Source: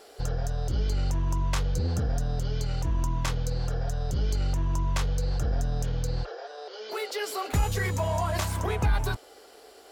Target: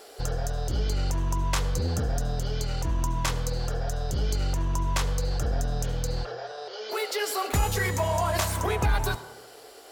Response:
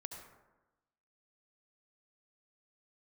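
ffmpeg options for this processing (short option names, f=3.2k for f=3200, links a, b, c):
-filter_complex "[0:a]highshelf=f=8.3k:g=4.5,asplit=2[a][b];[b]highpass=210[c];[1:a]atrim=start_sample=2205[d];[c][d]afir=irnorm=-1:irlink=0,volume=-2.5dB[e];[a][e]amix=inputs=2:normalize=0"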